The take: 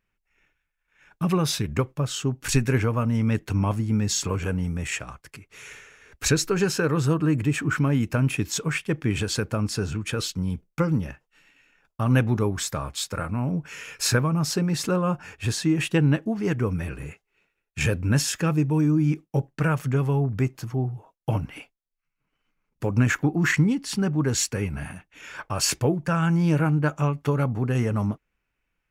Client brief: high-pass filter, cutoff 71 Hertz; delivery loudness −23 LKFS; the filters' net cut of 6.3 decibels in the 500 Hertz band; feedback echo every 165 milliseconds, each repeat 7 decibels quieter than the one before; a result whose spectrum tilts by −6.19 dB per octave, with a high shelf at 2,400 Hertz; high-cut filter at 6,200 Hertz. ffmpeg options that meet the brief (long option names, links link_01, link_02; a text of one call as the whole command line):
ffmpeg -i in.wav -af "highpass=71,lowpass=6200,equalizer=frequency=500:width_type=o:gain=-8,highshelf=frequency=2400:gain=-3.5,aecho=1:1:165|330|495|660|825:0.447|0.201|0.0905|0.0407|0.0183,volume=2.5dB" out.wav